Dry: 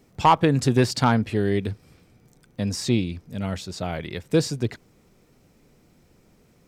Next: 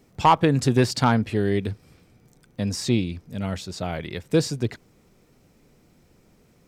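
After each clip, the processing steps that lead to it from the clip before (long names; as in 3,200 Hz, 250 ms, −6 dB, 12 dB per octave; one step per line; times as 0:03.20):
no processing that can be heard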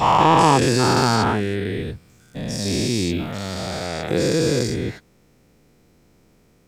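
every bin's largest magnitude spread in time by 480 ms
level −4.5 dB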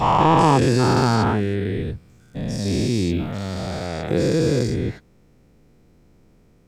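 spectral tilt −1.5 dB per octave
level −2 dB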